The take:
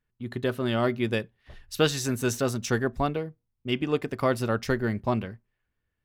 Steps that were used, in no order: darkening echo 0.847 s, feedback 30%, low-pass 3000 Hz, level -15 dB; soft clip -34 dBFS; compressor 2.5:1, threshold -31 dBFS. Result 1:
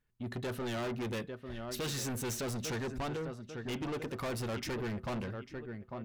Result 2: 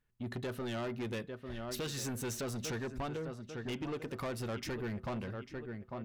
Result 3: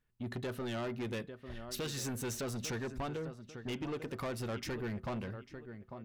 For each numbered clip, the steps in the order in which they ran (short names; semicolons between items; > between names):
darkening echo > soft clip > compressor; darkening echo > compressor > soft clip; compressor > darkening echo > soft clip